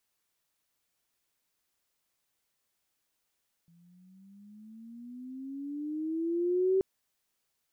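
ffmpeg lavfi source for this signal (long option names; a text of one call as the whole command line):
ffmpeg -f lavfi -i "aevalsrc='pow(10,(-22+36.5*(t/3.13-1))/20)*sin(2*PI*167*3.13/(14.5*log(2)/12)*(exp(14.5*log(2)/12*t/3.13)-1))':duration=3.13:sample_rate=44100" out.wav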